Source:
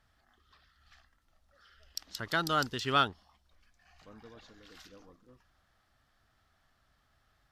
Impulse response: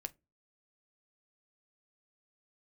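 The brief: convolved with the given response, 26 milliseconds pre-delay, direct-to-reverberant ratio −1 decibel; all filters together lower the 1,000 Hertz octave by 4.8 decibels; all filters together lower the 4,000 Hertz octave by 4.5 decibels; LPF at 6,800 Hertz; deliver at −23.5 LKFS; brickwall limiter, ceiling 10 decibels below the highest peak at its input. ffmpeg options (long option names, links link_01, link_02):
-filter_complex "[0:a]lowpass=6800,equalizer=frequency=1000:width_type=o:gain=-7,equalizer=frequency=4000:width_type=o:gain=-5,alimiter=level_in=4.5dB:limit=-24dB:level=0:latency=1,volume=-4.5dB,asplit=2[link_01][link_02];[1:a]atrim=start_sample=2205,adelay=26[link_03];[link_02][link_03]afir=irnorm=-1:irlink=0,volume=4dB[link_04];[link_01][link_04]amix=inputs=2:normalize=0,volume=16.5dB"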